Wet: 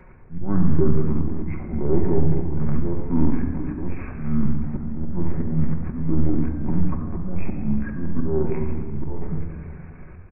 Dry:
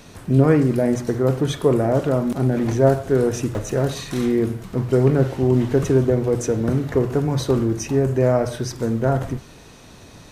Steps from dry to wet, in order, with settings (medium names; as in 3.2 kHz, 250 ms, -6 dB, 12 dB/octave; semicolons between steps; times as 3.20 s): LPC vocoder at 8 kHz pitch kept; slow attack 278 ms; simulated room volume 3700 m³, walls mixed, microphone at 2.5 m; pitch shift -8 st; trim -3 dB